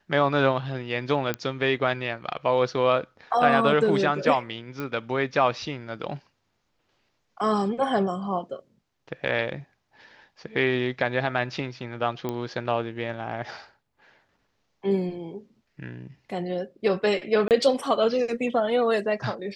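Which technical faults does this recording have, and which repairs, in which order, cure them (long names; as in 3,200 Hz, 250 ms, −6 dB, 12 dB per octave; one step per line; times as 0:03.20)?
0:01.34: click −12 dBFS
0:04.80: click −19 dBFS
0:12.29: click −16 dBFS
0:17.48–0:17.51: drop-out 28 ms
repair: click removal
repair the gap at 0:17.48, 28 ms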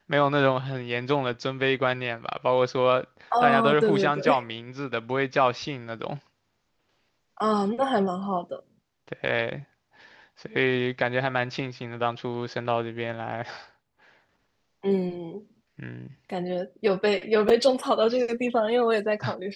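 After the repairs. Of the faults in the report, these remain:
none of them is left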